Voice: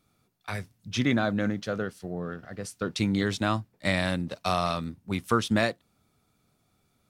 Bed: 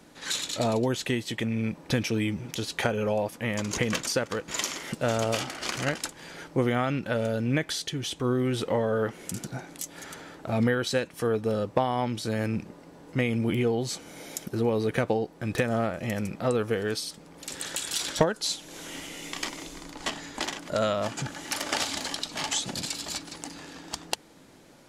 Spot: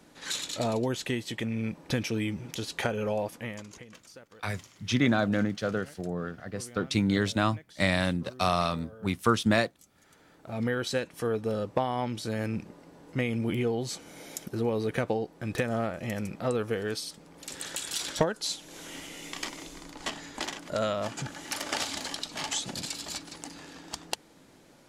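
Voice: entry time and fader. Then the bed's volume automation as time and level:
3.95 s, +0.5 dB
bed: 3.36 s -3 dB
3.87 s -23 dB
9.92 s -23 dB
10.77 s -3 dB

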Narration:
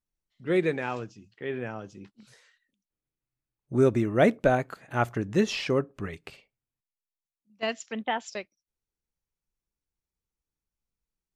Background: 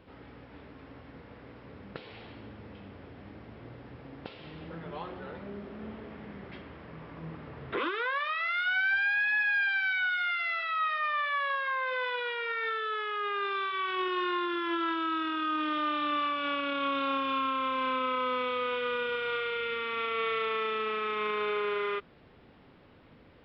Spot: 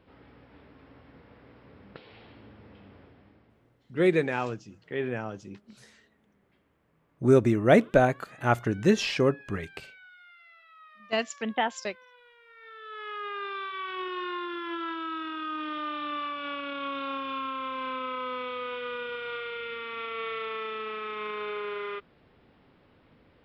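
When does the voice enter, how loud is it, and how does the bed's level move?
3.50 s, +2.0 dB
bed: 2.98 s -4.5 dB
3.94 s -23.5 dB
12.45 s -23.5 dB
13.09 s -3.5 dB

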